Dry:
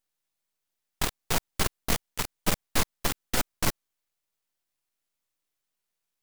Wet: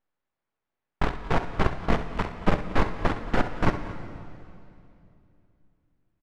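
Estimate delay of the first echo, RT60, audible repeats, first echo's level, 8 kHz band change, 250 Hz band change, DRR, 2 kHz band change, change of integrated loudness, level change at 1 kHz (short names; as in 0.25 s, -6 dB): 66 ms, 2.7 s, 2, -12.0 dB, -20.5 dB, +7.0 dB, 7.0 dB, +2.0 dB, +1.5 dB, +6.0 dB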